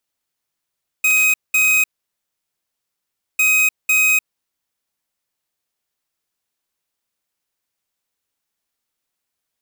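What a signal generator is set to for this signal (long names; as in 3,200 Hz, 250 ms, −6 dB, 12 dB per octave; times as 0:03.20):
beeps in groups square 2,520 Hz, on 0.30 s, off 0.20 s, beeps 2, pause 1.55 s, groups 2, −14.5 dBFS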